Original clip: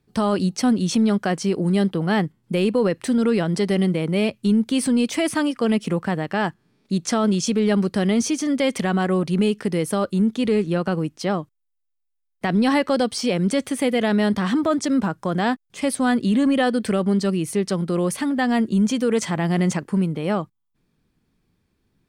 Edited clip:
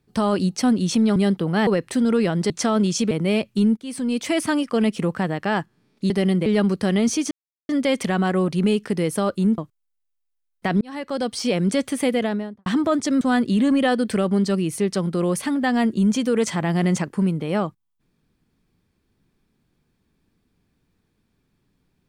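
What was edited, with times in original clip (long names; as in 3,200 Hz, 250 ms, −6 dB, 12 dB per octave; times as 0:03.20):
0:01.16–0:01.70: remove
0:02.21–0:02.80: remove
0:03.63–0:03.99: swap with 0:06.98–0:07.59
0:04.65–0:05.22: fade in, from −19.5 dB
0:08.44: splice in silence 0.38 s
0:10.33–0:11.37: remove
0:12.60–0:13.27: fade in
0:13.86–0:14.45: fade out and dull
0:15.00–0:15.96: remove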